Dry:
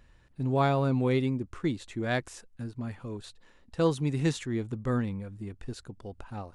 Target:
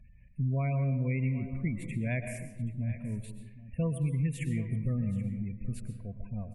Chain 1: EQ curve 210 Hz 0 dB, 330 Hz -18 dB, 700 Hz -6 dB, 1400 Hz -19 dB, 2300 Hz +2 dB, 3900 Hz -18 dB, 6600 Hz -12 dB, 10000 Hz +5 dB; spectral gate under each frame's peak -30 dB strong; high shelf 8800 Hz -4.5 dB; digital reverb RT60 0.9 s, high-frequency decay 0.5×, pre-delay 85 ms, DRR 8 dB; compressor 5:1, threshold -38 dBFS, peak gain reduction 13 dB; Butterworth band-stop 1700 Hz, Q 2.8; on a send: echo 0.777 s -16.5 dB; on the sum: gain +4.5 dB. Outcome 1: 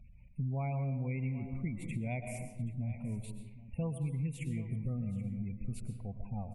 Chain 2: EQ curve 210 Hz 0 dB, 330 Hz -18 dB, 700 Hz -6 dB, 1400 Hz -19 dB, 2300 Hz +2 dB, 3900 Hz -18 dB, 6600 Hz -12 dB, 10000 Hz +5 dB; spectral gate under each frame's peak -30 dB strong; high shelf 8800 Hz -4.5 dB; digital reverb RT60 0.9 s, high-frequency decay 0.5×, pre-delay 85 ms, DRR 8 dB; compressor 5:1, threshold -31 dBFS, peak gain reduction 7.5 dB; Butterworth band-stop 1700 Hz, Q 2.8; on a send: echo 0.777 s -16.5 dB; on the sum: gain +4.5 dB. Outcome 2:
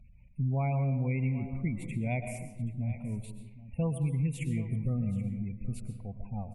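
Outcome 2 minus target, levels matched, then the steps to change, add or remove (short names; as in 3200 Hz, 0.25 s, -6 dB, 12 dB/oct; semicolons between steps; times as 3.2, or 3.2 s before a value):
1000 Hz band +5.0 dB
change: Butterworth band-stop 820 Hz, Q 2.8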